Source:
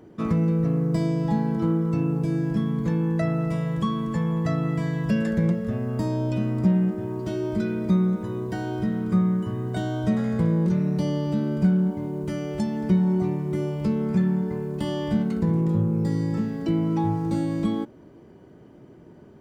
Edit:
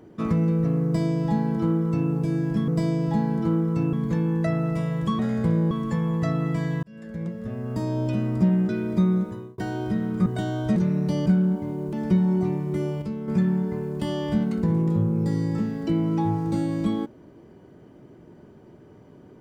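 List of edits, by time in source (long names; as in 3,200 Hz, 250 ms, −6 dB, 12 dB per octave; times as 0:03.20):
0:00.85–0:02.10: duplicate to 0:02.68
0:05.06–0:06.24: fade in
0:06.92–0:07.61: remove
0:08.12–0:08.50: fade out
0:09.18–0:09.64: remove
0:10.14–0:10.66: move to 0:03.94
0:11.16–0:11.61: remove
0:12.28–0:12.72: remove
0:13.81–0:14.07: clip gain −7 dB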